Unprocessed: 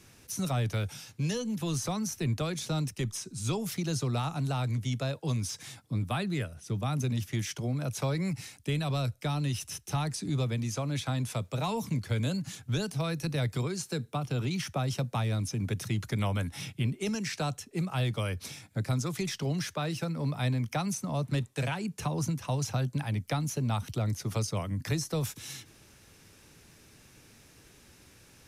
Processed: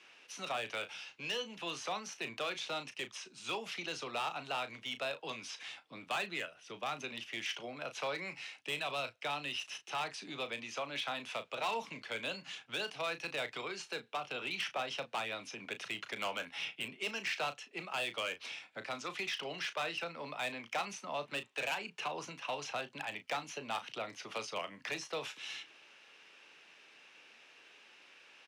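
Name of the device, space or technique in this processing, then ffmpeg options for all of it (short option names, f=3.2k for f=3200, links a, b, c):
megaphone: -filter_complex "[0:a]highpass=620,lowpass=3.5k,equalizer=f=2.8k:t=o:w=0.52:g=9,asoftclip=type=hard:threshold=-30.5dB,highpass=120,asplit=2[a][b];[b]adelay=35,volume=-11dB[c];[a][c]amix=inputs=2:normalize=0"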